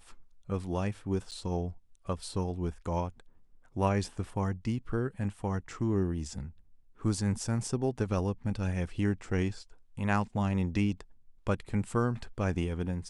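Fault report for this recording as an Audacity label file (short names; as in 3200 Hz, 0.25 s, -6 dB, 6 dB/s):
1.310000	1.320000	gap 7.6 ms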